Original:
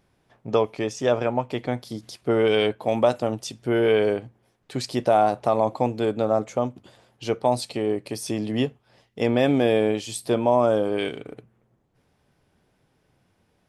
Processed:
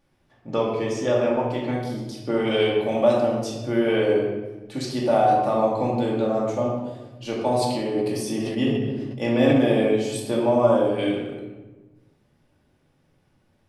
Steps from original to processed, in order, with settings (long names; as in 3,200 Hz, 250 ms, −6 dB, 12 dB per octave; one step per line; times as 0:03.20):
rectangular room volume 680 cubic metres, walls mixed, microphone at 2.4 metres
0:07.39–0:09.60: level that may fall only so fast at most 26 dB per second
level −5.5 dB